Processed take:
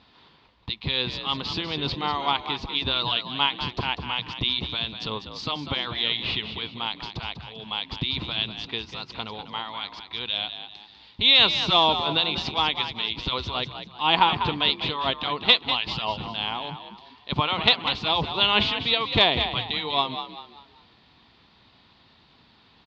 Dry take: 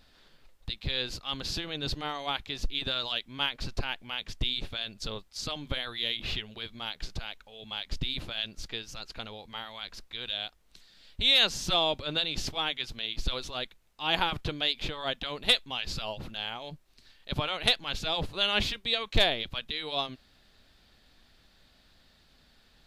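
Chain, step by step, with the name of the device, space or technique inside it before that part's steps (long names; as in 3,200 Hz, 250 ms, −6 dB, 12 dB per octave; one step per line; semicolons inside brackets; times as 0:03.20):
frequency-shifting delay pedal into a guitar cabinet (echo with shifted repeats 196 ms, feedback 37%, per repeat +53 Hz, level −9.5 dB; loudspeaker in its box 99–4,200 Hz, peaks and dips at 580 Hz −6 dB, 990 Hz +9 dB, 1,600 Hz −7 dB)
level +7 dB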